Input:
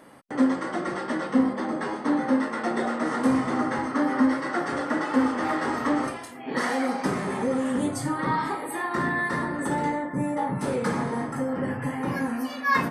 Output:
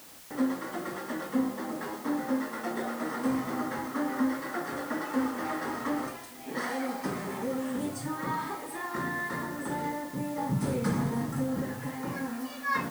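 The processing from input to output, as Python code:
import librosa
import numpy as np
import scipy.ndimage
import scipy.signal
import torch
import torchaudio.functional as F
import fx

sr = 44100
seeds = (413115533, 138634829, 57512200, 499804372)

y = fx.bass_treble(x, sr, bass_db=11, treble_db=5, at=(10.38, 11.62))
y = fx.dmg_noise_colour(y, sr, seeds[0], colour='white', level_db=-44.0)
y = y * 10.0 ** (-7.0 / 20.0)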